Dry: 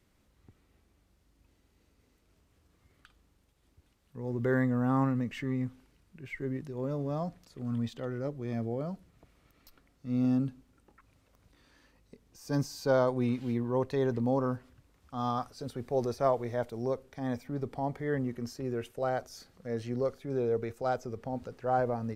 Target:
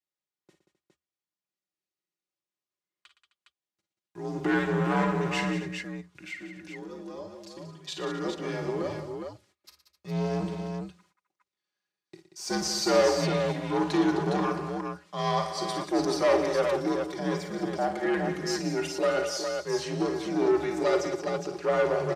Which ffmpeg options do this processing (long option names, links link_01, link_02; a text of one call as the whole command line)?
ffmpeg -i in.wav -filter_complex "[0:a]agate=range=-34dB:threshold=-56dB:ratio=16:detection=peak,highshelf=frequency=3000:gain=11,aecho=1:1:4.6:0.72,asplit=3[link_01][link_02][link_03];[link_01]afade=type=out:start_time=5.59:duration=0.02[link_04];[link_02]acompressor=threshold=-41dB:ratio=12,afade=type=in:start_time=5.59:duration=0.02,afade=type=out:start_time=7.87:duration=0.02[link_05];[link_03]afade=type=in:start_time=7.87:duration=0.02[link_06];[link_04][link_05][link_06]amix=inputs=3:normalize=0,aeval=exprs='(tanh(17.8*val(0)+0.5)-tanh(0.5))/17.8':channel_layout=same,afreqshift=-79,highpass=270,lowpass=7200,aecho=1:1:42|54|116|183|260|411:0.224|0.335|0.224|0.299|0.15|0.531,volume=7dB" out.wav